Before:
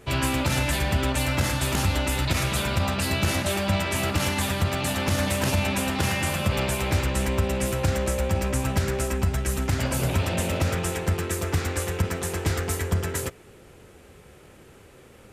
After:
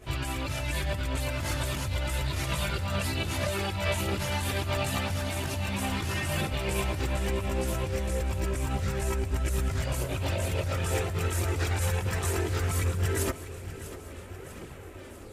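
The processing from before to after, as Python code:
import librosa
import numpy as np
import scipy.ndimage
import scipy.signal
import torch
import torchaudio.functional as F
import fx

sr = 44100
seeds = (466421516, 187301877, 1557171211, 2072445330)

p1 = fx.over_compress(x, sr, threshold_db=-29.0, ratio=-1.0)
p2 = fx.chorus_voices(p1, sr, voices=6, hz=0.57, base_ms=20, depth_ms=1.7, mix_pct=65)
y = p2 + fx.echo_feedback(p2, sr, ms=646, feedback_pct=56, wet_db=-14.0, dry=0)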